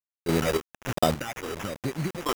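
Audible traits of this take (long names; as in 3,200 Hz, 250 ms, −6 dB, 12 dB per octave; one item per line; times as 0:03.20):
phaser sweep stages 6, 1.2 Hz, lowest notch 160–2,500 Hz
a quantiser's noise floor 6 bits, dither none
sample-and-hold tremolo, depth 75%
aliases and images of a low sample rate 4,300 Hz, jitter 0%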